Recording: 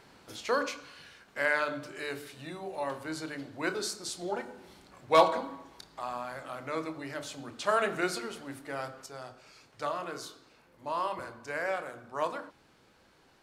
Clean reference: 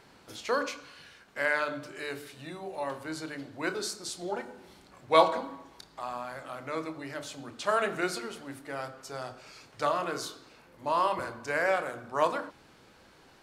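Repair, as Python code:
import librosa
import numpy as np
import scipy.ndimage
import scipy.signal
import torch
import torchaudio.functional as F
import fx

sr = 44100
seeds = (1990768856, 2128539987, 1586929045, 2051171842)

y = fx.fix_declip(x, sr, threshold_db=-12.0)
y = fx.gain(y, sr, db=fx.steps((0.0, 0.0), (9.06, 5.5)))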